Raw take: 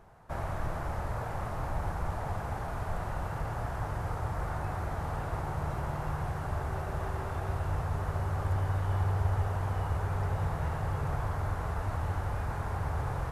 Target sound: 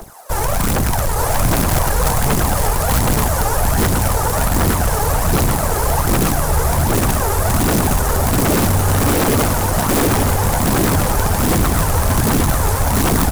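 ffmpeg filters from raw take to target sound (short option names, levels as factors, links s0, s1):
-filter_complex "[0:a]tiltshelf=f=970:g=3,bandreject=f=60:t=h:w=6,bandreject=f=120:t=h:w=6,bandreject=f=180:t=h:w=6,bandreject=f=240:t=h:w=6,bandreject=f=300:t=h:w=6,bandreject=f=360:t=h:w=6,bandreject=f=420:t=h:w=6,aphaser=in_gain=1:out_gain=1:delay=2.5:decay=0.73:speed=1.3:type=triangular,acrossover=split=350|4100[s0][s1][s2];[s0]aeval=exprs='sgn(val(0))*max(abs(val(0))-0.00501,0)':c=same[s3];[s2]crystalizer=i=8:c=0[s4];[s3][s1][s4]amix=inputs=3:normalize=0,acrusher=bits=3:mode=log:mix=0:aa=0.000001,aeval=exprs='0.473*sin(PI/2*7.94*val(0)/0.473)':c=same,aecho=1:1:882:0.631,volume=0.473"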